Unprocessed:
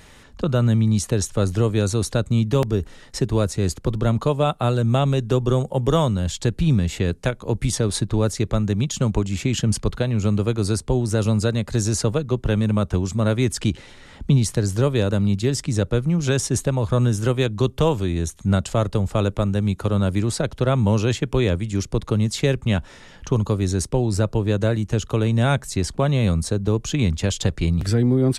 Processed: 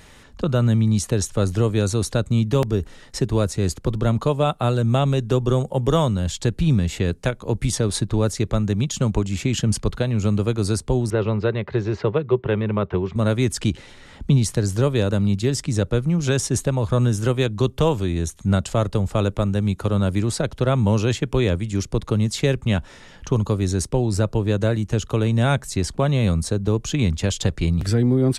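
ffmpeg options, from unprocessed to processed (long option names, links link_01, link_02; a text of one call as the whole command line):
ffmpeg -i in.wav -filter_complex "[0:a]asettb=1/sr,asplit=3[link_01][link_02][link_03];[link_01]atrim=end=11.104[link_04];[link_02]atrim=start=11.1:end=13.16,asetpts=PTS-STARTPTS,afade=type=in:duration=0.004:curve=qsin,afade=type=out:start_time=2.056:duration=0.004:curve=qsin,highpass=110,equalizer=frequency=250:width_type=q:width=4:gain=-10,equalizer=frequency=390:width_type=q:width=4:gain=8,equalizer=frequency=1000:width_type=q:width=4:gain=4,equalizer=frequency=2000:width_type=q:width=4:gain=4,lowpass=frequency=3200:width=0.5412,lowpass=frequency=3200:width=1.3066[link_05];[link_03]atrim=start=13.156[link_06];[link_04][link_05]acrossfade=duration=0.004:curve1=hsin:curve2=qsin[link_07];[link_07][link_06]acrossfade=duration=0.004:curve1=qsin:curve2=hsin" out.wav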